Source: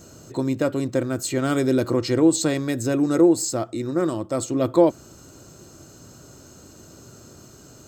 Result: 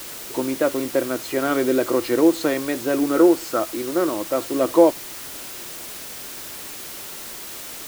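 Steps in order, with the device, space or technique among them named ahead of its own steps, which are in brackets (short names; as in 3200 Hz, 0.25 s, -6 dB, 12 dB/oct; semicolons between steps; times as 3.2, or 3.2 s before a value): 3.17–3.6 bell 1400 Hz +12.5 dB 0.29 oct; wax cylinder (BPF 340–2700 Hz; wow and flutter; white noise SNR 13 dB); gain +4 dB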